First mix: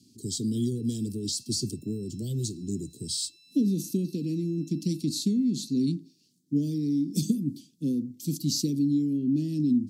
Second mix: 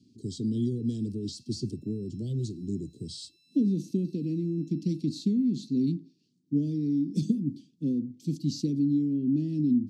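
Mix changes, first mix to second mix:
speech: add tape spacing loss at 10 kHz 20 dB; background -8.0 dB

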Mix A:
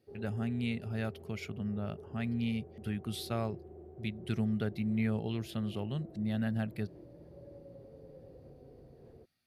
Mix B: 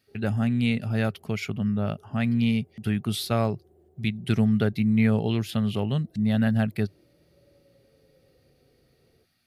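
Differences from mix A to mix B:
speech +10.5 dB; background -9.0 dB

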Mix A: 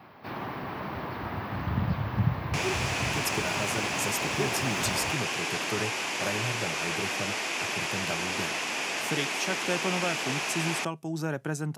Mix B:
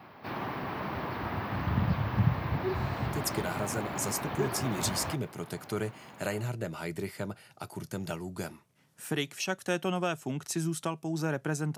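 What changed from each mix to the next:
second sound: muted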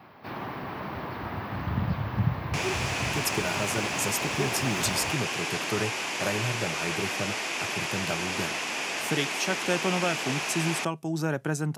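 speech +3.0 dB; second sound: unmuted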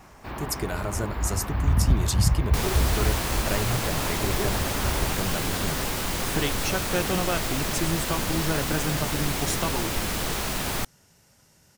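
speech: entry -2.75 s; second sound: remove cabinet simulation 430–9000 Hz, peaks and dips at 540 Hz -5 dB, 1.3 kHz -4 dB, 2.5 kHz +8 dB, 4 kHz -6 dB, 8.6 kHz -9 dB; master: remove high-pass 110 Hz 24 dB/octave

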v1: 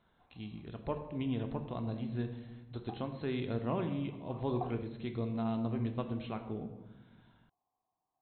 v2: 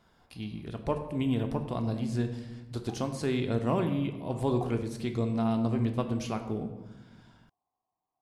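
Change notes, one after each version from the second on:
speech +6.5 dB; master: remove brick-wall FIR low-pass 4.2 kHz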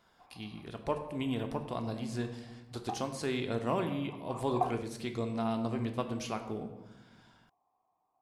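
background +11.0 dB; master: add bass shelf 320 Hz -9 dB

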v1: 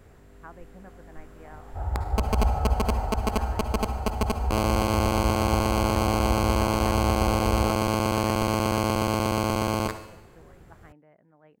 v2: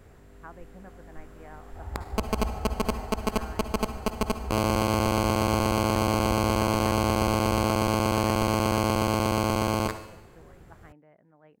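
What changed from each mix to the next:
second sound -9.5 dB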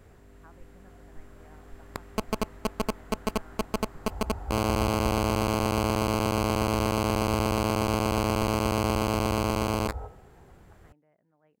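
speech -10.0 dB; first sound: send off; second sound: entry +2.35 s

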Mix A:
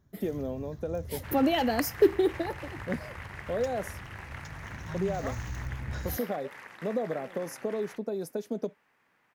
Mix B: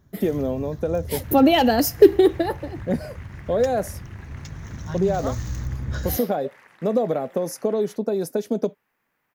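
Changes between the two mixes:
speech +9.5 dB; first sound +8.0 dB; second sound -5.0 dB

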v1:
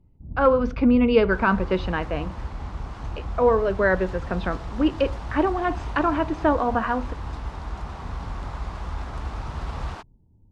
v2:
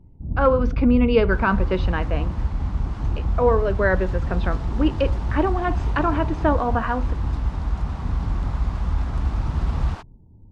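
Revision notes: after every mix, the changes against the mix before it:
first sound +9.0 dB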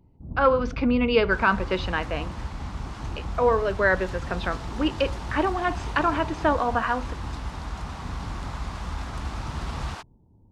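master: add tilt EQ +2.5 dB/octave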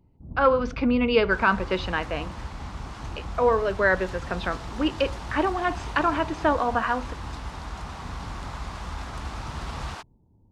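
first sound -3.0 dB

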